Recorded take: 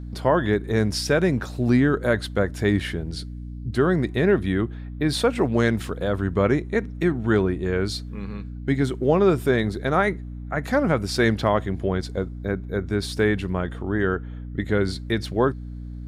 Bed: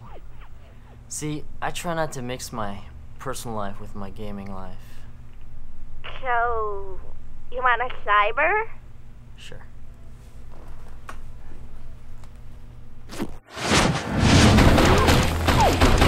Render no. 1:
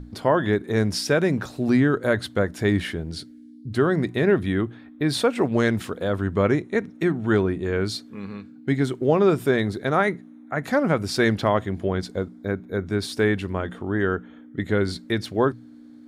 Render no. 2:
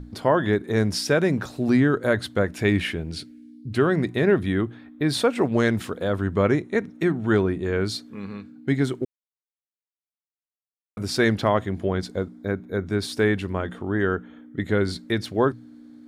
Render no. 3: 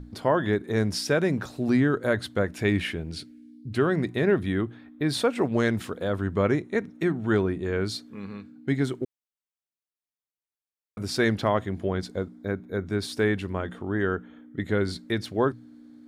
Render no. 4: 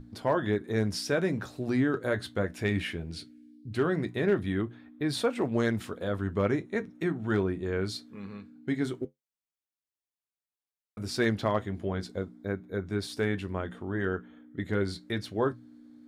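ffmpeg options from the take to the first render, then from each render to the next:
ffmpeg -i in.wav -af "bandreject=frequency=60:width_type=h:width=6,bandreject=frequency=120:width_type=h:width=6,bandreject=frequency=180:width_type=h:width=6" out.wav
ffmpeg -i in.wav -filter_complex "[0:a]asettb=1/sr,asplit=3[link_01][link_02][link_03];[link_01]atrim=end=2.444[link_04];[link_02]atrim=start=2.44:end=4.02,asetpts=PTS-STARTPTS,afade=type=in:duration=0.004:curve=qsin,afade=type=out:start_time=1.576:duration=0.004:curve=qsin,equalizer=frequency=2500:width_type=o:width=0.38:gain=9[link_05];[link_03]atrim=start=4.016[link_06];[link_04][link_05]acrossfade=duration=0.004:curve1=hsin:curve2=qsin[link_07];[link_07][link_06]acrossfade=duration=0.004:curve1=qsin:curve2=hsin,asplit=3[link_08][link_09][link_10];[link_08]atrim=end=9.05,asetpts=PTS-STARTPTS,afade=type=out:start_time=9.046:duration=0.004:curve=hsin[link_11];[link_09]atrim=start=9.05:end=10.97,asetpts=PTS-STARTPTS,volume=0[link_12];[link_10]atrim=start=10.97,asetpts=PTS-STARTPTS,afade=type=in:duration=0.004:curve=hsin[link_13];[link_11][link_12][link_13]concat=n=3:v=0:a=1" out.wav
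ffmpeg -i in.wav -af "volume=-3dB" out.wav
ffmpeg -i in.wav -af "asoftclip=type=hard:threshold=-12.5dB,flanger=delay=8.7:depth=2.7:regen=-59:speed=0.18:shape=triangular" out.wav

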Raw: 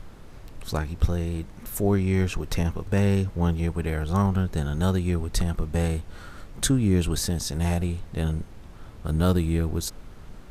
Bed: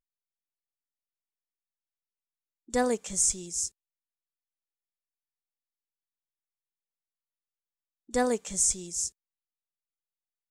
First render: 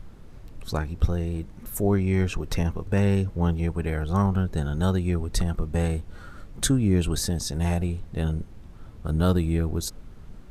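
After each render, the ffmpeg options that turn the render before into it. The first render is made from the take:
ffmpeg -i in.wav -af "afftdn=noise_reduction=6:noise_floor=-44" out.wav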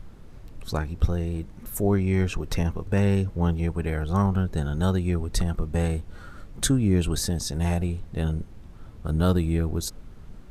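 ffmpeg -i in.wav -af anull out.wav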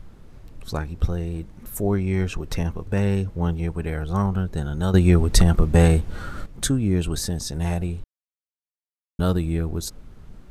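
ffmpeg -i in.wav -filter_complex "[0:a]asplit=5[link_01][link_02][link_03][link_04][link_05];[link_01]atrim=end=4.942[link_06];[link_02]atrim=start=4.938:end=6.462,asetpts=PTS-STARTPTS,volume=9.5dB[link_07];[link_03]atrim=start=6.458:end=8.04,asetpts=PTS-STARTPTS,afade=type=out:start_time=1.578:duration=0.004:curve=hsin[link_08];[link_04]atrim=start=8.04:end=9.19,asetpts=PTS-STARTPTS,volume=0[link_09];[link_05]atrim=start=9.19,asetpts=PTS-STARTPTS,afade=type=in:duration=0.004:curve=hsin[link_10];[link_06][link_07]acrossfade=duration=0.004:curve1=hsin:curve2=hsin[link_11];[link_08][link_09][link_10]concat=n=3:v=0:a=1[link_12];[link_11][link_12]acrossfade=duration=0.004:curve1=hsin:curve2=hsin" out.wav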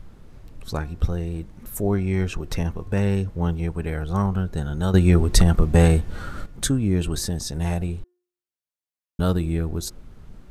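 ffmpeg -i in.wav -af "bandreject=frequency=356.8:width_type=h:width=4,bandreject=frequency=713.6:width_type=h:width=4,bandreject=frequency=1070.4:width_type=h:width=4,bandreject=frequency=1427.2:width_type=h:width=4,bandreject=frequency=1784:width_type=h:width=4" out.wav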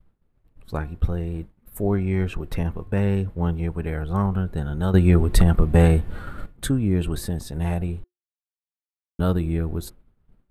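ffmpeg -i in.wav -af "agate=range=-33dB:threshold=-28dB:ratio=3:detection=peak,equalizer=frequency=6000:width=1.3:gain=-13.5" out.wav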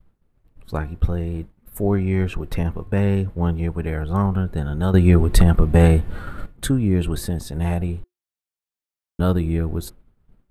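ffmpeg -i in.wav -af "volume=2.5dB,alimiter=limit=-2dB:level=0:latency=1" out.wav

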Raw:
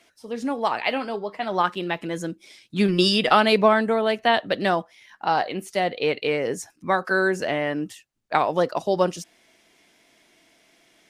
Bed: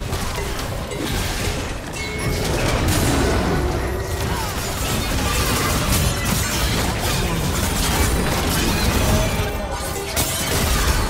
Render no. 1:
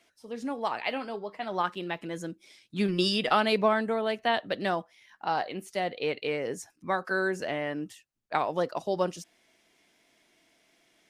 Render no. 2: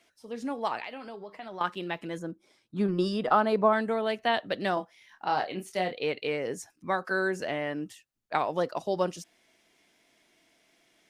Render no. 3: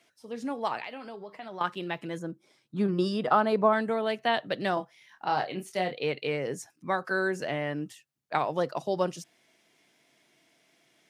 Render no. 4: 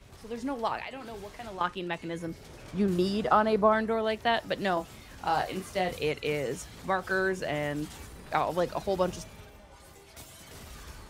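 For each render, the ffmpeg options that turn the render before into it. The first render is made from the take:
ffmpeg -i in.wav -af "volume=-7dB" out.wav
ffmpeg -i in.wav -filter_complex "[0:a]asettb=1/sr,asplit=3[link_01][link_02][link_03];[link_01]atrim=end=0.844[link_04];[link_02]atrim=start=0.84:end=1.61,asetpts=PTS-STARTPTS,afade=type=in:duration=0.004:curve=qsin,afade=type=out:start_time=0.766:duration=0.004:curve=qsin,acompressor=threshold=-39dB:ratio=3:attack=3.2:release=140:knee=1:detection=peak[link_05];[link_03]atrim=start=1.606[link_06];[link_04][link_05]acrossfade=duration=0.004:curve1=hsin:curve2=qsin[link_07];[link_07][link_06]acrossfade=duration=0.004:curve1=qsin:curve2=hsin,asplit=3[link_08][link_09][link_10];[link_08]afade=type=out:start_time=2.18:duration=0.02[link_11];[link_09]highshelf=frequency=1700:width_type=q:width=1.5:gain=-10,afade=type=in:start_time=2.18:duration=0.02,afade=type=out:start_time=3.72:duration=0.02[link_12];[link_10]afade=type=in:start_time=3.72:duration=0.02[link_13];[link_11][link_12][link_13]amix=inputs=3:normalize=0,asettb=1/sr,asplit=3[link_14][link_15][link_16];[link_14]atrim=end=4.744[link_17];[link_15]atrim=start=4.74:end=5.93,asetpts=PTS-STARTPTS,afade=type=in:duration=0.004:curve=qsin,afade=type=out:start_time=1.186:duration=0.004:curve=qsin,asplit=2[link_18][link_19];[link_19]adelay=27,volume=-6dB[link_20];[link_18][link_20]amix=inputs=2:normalize=0,atrim=end_sample=52479[link_21];[link_16]atrim=start=5.926[link_22];[link_17][link_21]acrossfade=duration=0.004:curve1=hsin:curve2=qsin[link_23];[link_23][link_22]acrossfade=duration=0.004:curve1=qsin:curve2=hsin" out.wav
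ffmpeg -i in.wav -af "highpass=100,equalizer=frequency=140:width=5.4:gain=9.5" out.wav
ffmpeg -i in.wav -i bed.wav -filter_complex "[1:a]volume=-27.5dB[link_01];[0:a][link_01]amix=inputs=2:normalize=0" out.wav

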